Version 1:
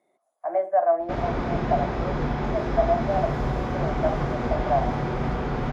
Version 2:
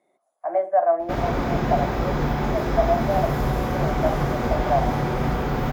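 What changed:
background: remove air absorption 84 m; reverb: on, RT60 0.30 s

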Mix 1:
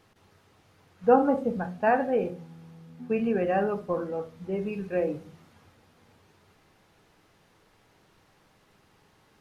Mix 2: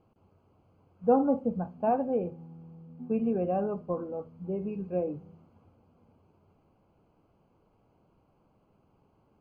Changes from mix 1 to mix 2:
speech: send -11.5 dB; master: add running mean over 24 samples

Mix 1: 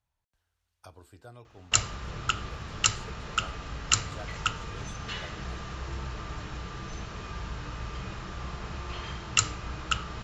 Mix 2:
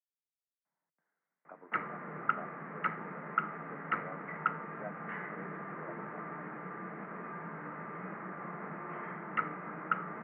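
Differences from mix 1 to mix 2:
speech: entry +0.65 s; master: add Chebyshev band-pass 160–2100 Hz, order 5

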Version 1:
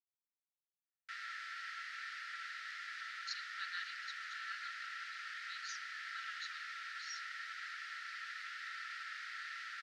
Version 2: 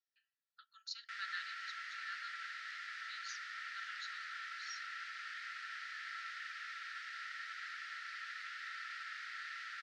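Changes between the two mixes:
speech: entry -2.40 s; master: add bell 14000 Hz -5 dB 1.1 oct

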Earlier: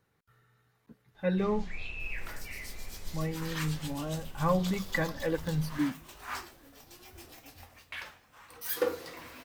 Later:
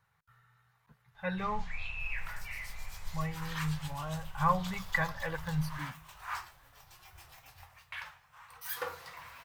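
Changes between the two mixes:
second sound -3.0 dB; master: add EQ curve 150 Hz 0 dB, 280 Hz -22 dB, 940 Hz +5 dB, 4800 Hz -2 dB

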